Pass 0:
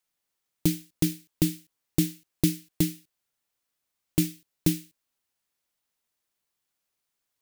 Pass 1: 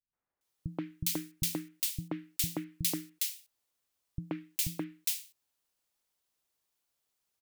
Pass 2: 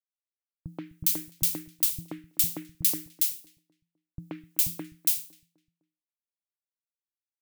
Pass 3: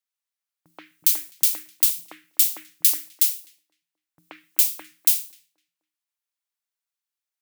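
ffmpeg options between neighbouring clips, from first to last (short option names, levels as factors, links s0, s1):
-filter_complex "[0:a]acrossover=split=750|1600[s0][s1][s2];[s0]acompressor=threshold=0.0282:ratio=6[s3];[s3][s1][s2]amix=inputs=3:normalize=0,acrossover=split=190|1900[s4][s5][s6];[s5]adelay=130[s7];[s6]adelay=410[s8];[s4][s7][s8]amix=inputs=3:normalize=0"
-filter_complex "[0:a]agate=range=0.0224:threshold=0.00112:ratio=3:detection=peak,crystalizer=i=1.5:c=0,asplit=2[s0][s1];[s1]adelay=254,lowpass=f=1300:p=1,volume=0.133,asplit=2[s2][s3];[s3]adelay=254,lowpass=f=1300:p=1,volume=0.43,asplit=2[s4][s5];[s5]adelay=254,lowpass=f=1300:p=1,volume=0.43,asplit=2[s6][s7];[s7]adelay=254,lowpass=f=1300:p=1,volume=0.43[s8];[s0][s2][s4][s6][s8]amix=inputs=5:normalize=0,volume=0.794"
-af "highpass=900,volume=2.11"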